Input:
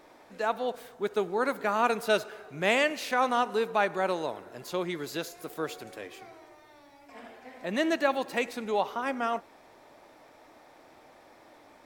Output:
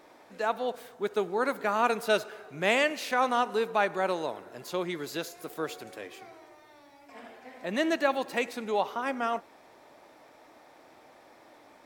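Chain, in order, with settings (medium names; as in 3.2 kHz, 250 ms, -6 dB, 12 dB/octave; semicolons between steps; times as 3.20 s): bass shelf 64 Hz -10 dB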